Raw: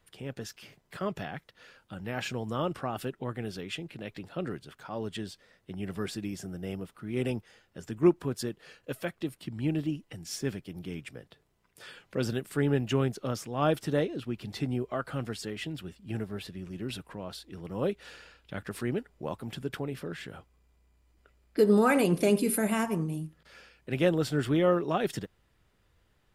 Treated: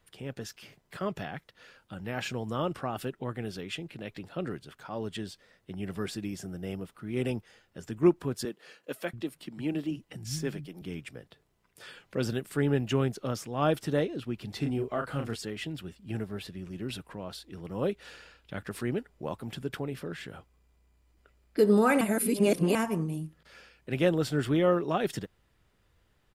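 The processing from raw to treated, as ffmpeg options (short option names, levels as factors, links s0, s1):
-filter_complex "[0:a]asettb=1/sr,asplit=3[s0][s1][s2];[s0]atrim=end=8.454[s3];[s1]atrim=start=8.45:end=10.82,asetpts=PTS-STARTPTS,afade=t=in:d=0.004:c=qsin,afade=t=out:st=2.366:d=0.004:c=qsin,acrossover=split=170[s4][s5];[s4]adelay=680[s6];[s6][s5]amix=inputs=2:normalize=0,atrim=end_sample=104517[s7];[s2]atrim=start=10.816[s8];[s3][s7]acrossfade=d=0.004:c1=hsin:c2=qsin[s9];[s9][s8]acrossfade=d=0.004:c1=qsin:c2=hsin,asplit=3[s10][s11][s12];[s10]afade=t=out:st=14.61:d=0.02[s13];[s11]asplit=2[s14][s15];[s15]adelay=35,volume=0.562[s16];[s14][s16]amix=inputs=2:normalize=0,afade=t=in:st=14.61:d=0.02,afade=t=out:st=15.34:d=0.02[s17];[s12]afade=t=in:st=15.34:d=0.02[s18];[s13][s17][s18]amix=inputs=3:normalize=0,asplit=3[s19][s20][s21];[s19]atrim=end=22.012[s22];[s20]atrim=start=22.008:end=22.752,asetpts=PTS-STARTPTS,areverse[s23];[s21]atrim=start=22.748[s24];[s22][s23]acrossfade=d=0.004:c1=hsin:c2=hsin[s25];[s25][s24]acrossfade=d=0.004:c1=hsin:c2=hsin"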